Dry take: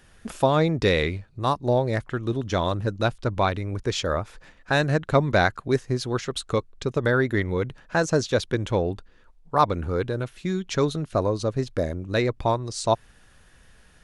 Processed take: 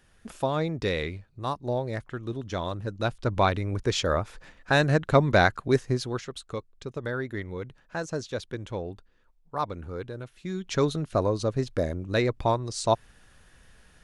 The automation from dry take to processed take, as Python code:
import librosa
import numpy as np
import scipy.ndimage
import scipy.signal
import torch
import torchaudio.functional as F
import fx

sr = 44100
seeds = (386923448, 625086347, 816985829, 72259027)

y = fx.gain(x, sr, db=fx.line((2.86, -7.0), (3.37, 0.0), (5.89, 0.0), (6.39, -10.0), (10.33, -10.0), (10.78, -1.5)))